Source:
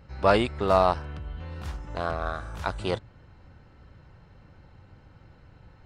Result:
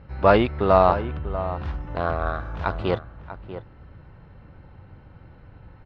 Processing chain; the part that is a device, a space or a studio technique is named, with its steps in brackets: shout across a valley (air absorption 290 m; outdoor echo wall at 110 m, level -12 dB); gain +5.5 dB

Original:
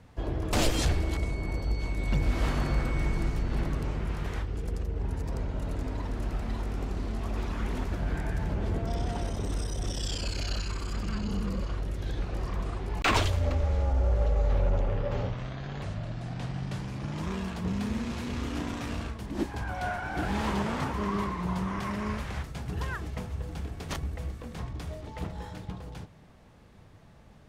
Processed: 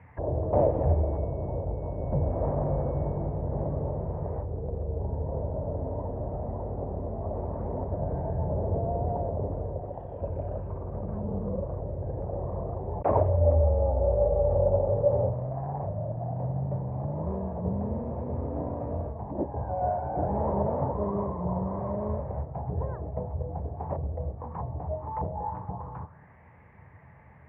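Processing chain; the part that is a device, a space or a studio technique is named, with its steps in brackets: 9.78–10.21 low shelf 430 Hz -7 dB; envelope filter bass rig (envelope low-pass 590–2400 Hz down, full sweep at -31.5 dBFS; speaker cabinet 77–2100 Hz, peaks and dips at 80 Hz +9 dB, 130 Hz +5 dB, 230 Hz -5 dB, 330 Hz -5 dB, 920 Hz +7 dB, 1400 Hz -6 dB)

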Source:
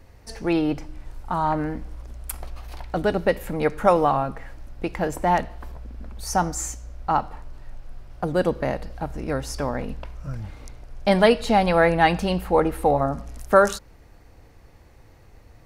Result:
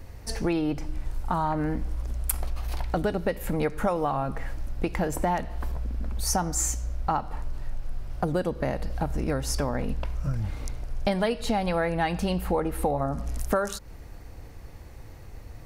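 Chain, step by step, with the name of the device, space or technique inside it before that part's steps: ASMR close-microphone chain (low shelf 190 Hz +5 dB; compressor 6:1, threshold -26 dBFS, peak gain reduction 16 dB; high shelf 7100 Hz +5.5 dB); gain +3 dB

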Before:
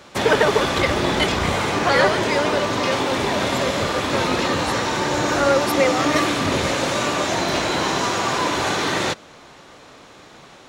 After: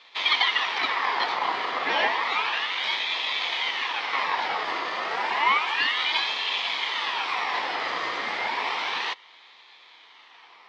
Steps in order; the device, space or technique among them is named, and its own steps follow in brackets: voice changer toy (ring modulator with a swept carrier 1900 Hz, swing 55%, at 0.31 Hz; speaker cabinet 590–3900 Hz, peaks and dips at 590 Hz -7 dB, 960 Hz +5 dB, 1500 Hz -10 dB, 2700 Hz -6 dB)

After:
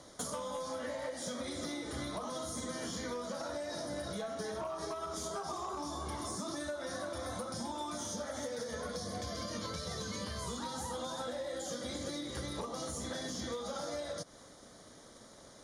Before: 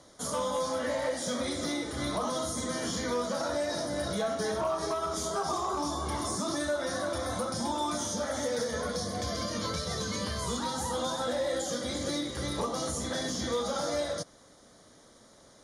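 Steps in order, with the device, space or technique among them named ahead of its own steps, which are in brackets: drum-bus smash (transient shaper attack +6 dB, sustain +1 dB; compressor 10:1, threshold -37 dBFS, peak gain reduction 13 dB; soft clip -28.5 dBFS, distortion -28 dB); gain +1 dB

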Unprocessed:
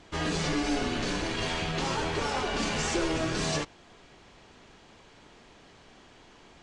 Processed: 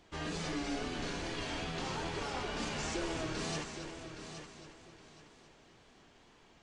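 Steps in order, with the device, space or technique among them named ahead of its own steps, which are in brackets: multi-head tape echo (multi-head echo 0.273 s, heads first and third, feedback 43%, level -10 dB; wow and flutter 47 cents); gain -9 dB

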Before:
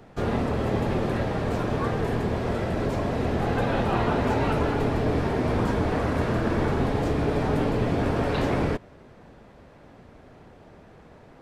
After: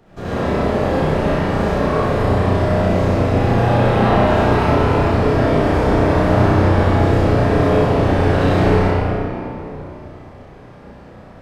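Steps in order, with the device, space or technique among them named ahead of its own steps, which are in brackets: tunnel (flutter echo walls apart 5.6 m, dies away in 0.6 s; reverb RT60 3.1 s, pre-delay 60 ms, DRR -9.5 dB); gain -3.5 dB

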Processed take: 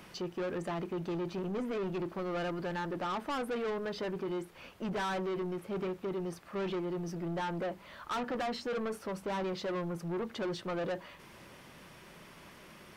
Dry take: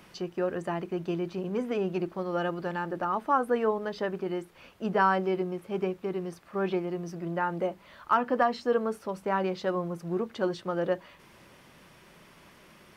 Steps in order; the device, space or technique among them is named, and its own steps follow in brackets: saturation between pre-emphasis and de-emphasis (high shelf 8000 Hz +10.5 dB; soft clip -33.5 dBFS, distortion -5 dB; high shelf 8000 Hz -10.5 dB); gain +1.5 dB

